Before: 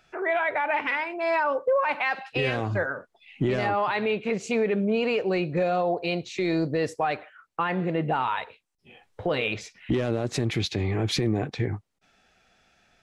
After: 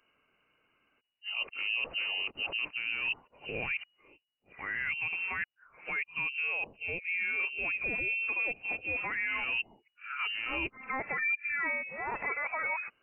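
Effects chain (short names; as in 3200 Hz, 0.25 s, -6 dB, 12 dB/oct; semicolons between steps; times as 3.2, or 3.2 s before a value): whole clip reversed; inverted band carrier 2900 Hz; gain -8.5 dB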